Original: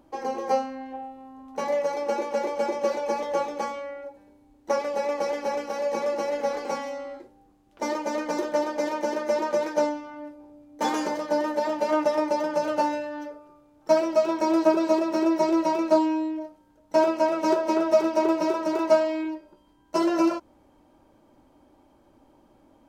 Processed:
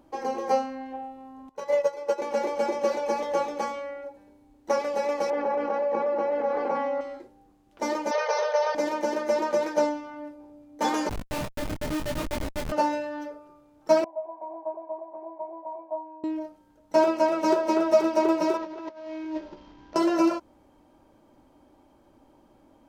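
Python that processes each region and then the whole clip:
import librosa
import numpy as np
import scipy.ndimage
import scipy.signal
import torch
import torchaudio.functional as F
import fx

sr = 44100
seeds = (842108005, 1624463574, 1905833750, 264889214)

y = fx.chain(x, sr, fx.comb(ms=2.0, depth=0.69),
    fx.upward_expand(threshold_db=-30.0, expansion=2.5), at=(1.49, 2.22))
y = fx.chain(y, sr, fx.lowpass(hz=1200.0, slope=12),
    fx.tilt_eq(slope=2.0),
    fx.env_flatten(amount_pct=70), at=(5.3, 7.01))
y = fx.chain(y, sr, fx.brickwall_bandpass(low_hz=410.0, high_hz=6400.0),
    fx.env_flatten(amount_pct=50), at=(8.11, 8.75))
y = fx.chain(y, sr, fx.highpass(hz=160.0, slope=6),
    fx.schmitt(flips_db=-22.5),
    fx.detune_double(cents=27), at=(11.09, 12.72))
y = fx.chain(y, sr, fx.formant_cascade(vowel='a'),
    fx.notch_comb(f0_hz=1300.0), at=(14.04, 16.24))
y = fx.chain(y, sr, fx.cvsd(bps=32000),
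    fx.lowpass(hz=2900.0, slope=6),
    fx.over_compress(threshold_db=-37.0, ratio=-1.0), at=(18.57, 19.96))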